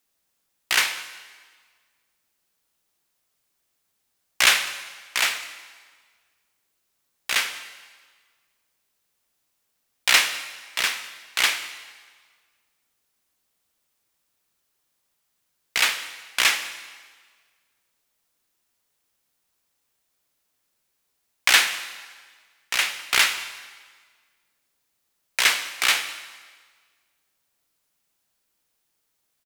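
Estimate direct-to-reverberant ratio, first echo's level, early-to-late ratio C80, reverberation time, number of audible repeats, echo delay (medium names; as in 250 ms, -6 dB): 11.0 dB, -22.0 dB, 13.0 dB, 1.6 s, 1, 203 ms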